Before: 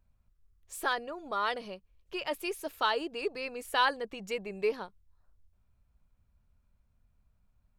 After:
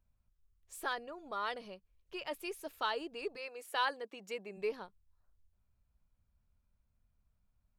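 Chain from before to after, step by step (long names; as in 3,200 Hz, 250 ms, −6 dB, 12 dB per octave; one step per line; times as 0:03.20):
0:03.36–0:04.56: high-pass filter 400 Hz → 180 Hz 24 dB per octave
level −6.5 dB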